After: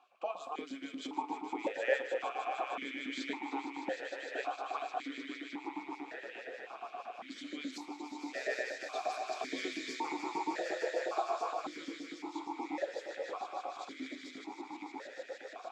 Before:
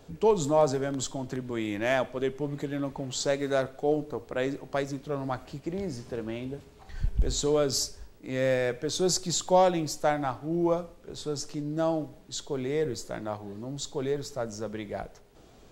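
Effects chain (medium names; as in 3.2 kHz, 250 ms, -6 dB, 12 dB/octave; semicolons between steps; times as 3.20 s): echo with a slow build-up 153 ms, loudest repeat 5, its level -7 dB; LFO high-pass saw up 8.5 Hz 450–1500 Hz; spectral gate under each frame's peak -10 dB weak; stepped vowel filter 1.8 Hz; trim +5.5 dB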